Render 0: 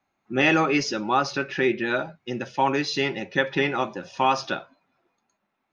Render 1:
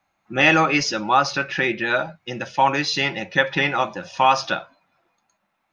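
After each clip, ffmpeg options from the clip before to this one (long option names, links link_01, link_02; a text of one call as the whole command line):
ffmpeg -i in.wav -af "equalizer=frequency=125:width_type=o:width=0.33:gain=-4,equalizer=frequency=250:width_type=o:width=0.33:gain=-10,equalizer=frequency=400:width_type=o:width=0.33:gain=-11,volume=5.5dB" out.wav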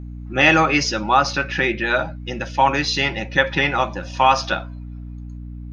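ffmpeg -i in.wav -af "aeval=exprs='val(0)+0.0224*(sin(2*PI*60*n/s)+sin(2*PI*2*60*n/s)/2+sin(2*PI*3*60*n/s)/3+sin(2*PI*4*60*n/s)/4+sin(2*PI*5*60*n/s)/5)':channel_layout=same,volume=1.5dB" out.wav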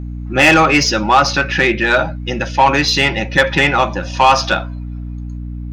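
ffmpeg -i in.wav -filter_complex "[0:a]asplit=2[link_01][link_02];[link_02]aeval=exprs='clip(val(0),-1,0.266)':channel_layout=same,volume=-9dB[link_03];[link_01][link_03]amix=inputs=2:normalize=0,acontrast=61,volume=-1.5dB" out.wav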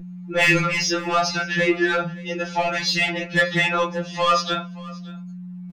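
ffmpeg -i in.wav -af "aecho=1:1:572:0.0841,afftfilt=real='re*2.83*eq(mod(b,8),0)':imag='im*2.83*eq(mod(b,8),0)':win_size=2048:overlap=0.75,volume=-4.5dB" out.wav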